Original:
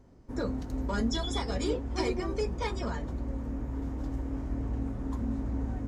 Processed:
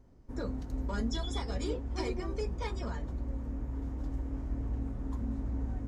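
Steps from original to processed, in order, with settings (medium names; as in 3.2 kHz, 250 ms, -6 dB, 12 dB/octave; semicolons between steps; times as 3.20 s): bass shelf 63 Hz +8.5 dB; trim -5.5 dB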